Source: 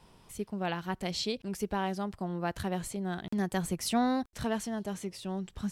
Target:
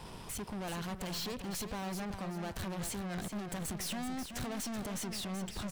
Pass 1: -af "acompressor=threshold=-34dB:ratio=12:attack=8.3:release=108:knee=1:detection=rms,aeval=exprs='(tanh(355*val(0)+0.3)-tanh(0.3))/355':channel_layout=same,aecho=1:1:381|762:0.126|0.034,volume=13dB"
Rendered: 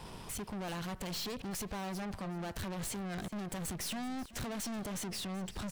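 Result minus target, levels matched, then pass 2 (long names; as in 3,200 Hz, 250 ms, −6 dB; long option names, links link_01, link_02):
echo-to-direct −9.5 dB
-af "acompressor=threshold=-34dB:ratio=12:attack=8.3:release=108:knee=1:detection=rms,aeval=exprs='(tanh(355*val(0)+0.3)-tanh(0.3))/355':channel_layout=same,aecho=1:1:381|762|1143:0.376|0.101|0.0274,volume=13dB"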